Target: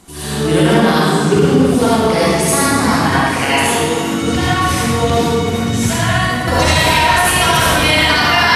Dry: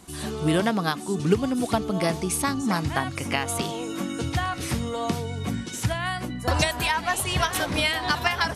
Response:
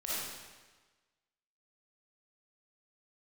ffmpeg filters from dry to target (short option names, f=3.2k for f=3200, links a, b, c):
-filter_complex "[0:a]asettb=1/sr,asplit=3[a][b][c];[a]atrim=end=1.554[d];[b]atrim=start=1.55:end=3.63,asetpts=PTS-STARTPTS,afade=t=in:d=0.004:c=qsin,afade=t=out:st=2.076:d=0.004:c=qsin,acrossover=split=170[e][f];[f]adelay=90[g];[e][g]amix=inputs=2:normalize=0,atrim=end_sample=91728[h];[c]atrim=start=3.626[i];[d][h]acrossfade=d=0.004:c1=hsin:c2=qsin[j];[j][i]acrossfade=d=0.004:c1=qsin:c2=hsin[k];[1:a]atrim=start_sample=2205,asetrate=32634,aresample=44100[l];[k][l]afir=irnorm=-1:irlink=0,alimiter=level_in=8dB:limit=-1dB:release=50:level=0:latency=1,volume=-1dB"